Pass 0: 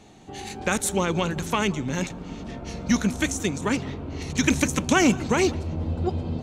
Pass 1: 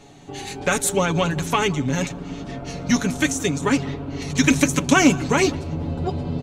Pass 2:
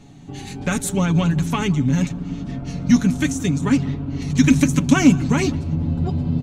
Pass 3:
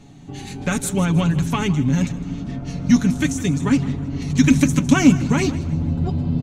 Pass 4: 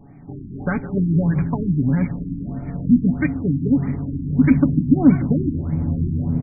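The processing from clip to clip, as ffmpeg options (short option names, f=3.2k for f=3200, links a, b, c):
-af "aecho=1:1:7.1:0.65,volume=2.5dB"
-af "lowshelf=f=310:t=q:w=1.5:g=8.5,volume=-4dB"
-filter_complex "[0:a]asplit=5[a][b][c][d][e];[b]adelay=157,afreqshift=-40,volume=-17.5dB[f];[c]adelay=314,afreqshift=-80,volume=-24.6dB[g];[d]adelay=471,afreqshift=-120,volume=-31.8dB[h];[e]adelay=628,afreqshift=-160,volume=-38.9dB[i];[a][f][g][h][i]amix=inputs=5:normalize=0"
-af "afftfilt=real='re*lt(b*sr/1024,350*pow(2500/350,0.5+0.5*sin(2*PI*1.6*pts/sr)))':imag='im*lt(b*sr/1024,350*pow(2500/350,0.5+0.5*sin(2*PI*1.6*pts/sr)))':win_size=1024:overlap=0.75"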